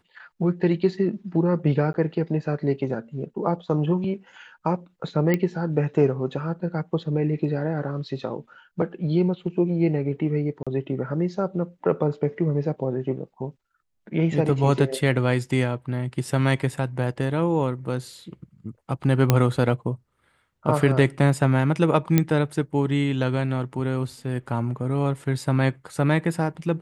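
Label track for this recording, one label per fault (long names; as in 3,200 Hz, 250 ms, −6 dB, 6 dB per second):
1.930000	1.940000	drop-out
5.340000	5.340000	click −10 dBFS
10.630000	10.670000	drop-out 36 ms
19.300000	19.300000	click −3 dBFS
22.180000	22.180000	click −5 dBFS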